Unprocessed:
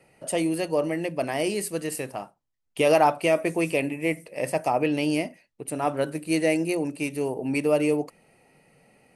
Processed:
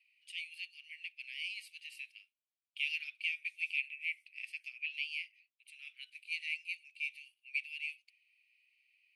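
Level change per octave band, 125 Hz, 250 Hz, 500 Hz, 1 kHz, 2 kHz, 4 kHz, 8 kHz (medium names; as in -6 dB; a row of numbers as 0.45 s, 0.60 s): under -40 dB, under -40 dB, under -40 dB, under -40 dB, -5.0 dB, -5.5 dB, under -25 dB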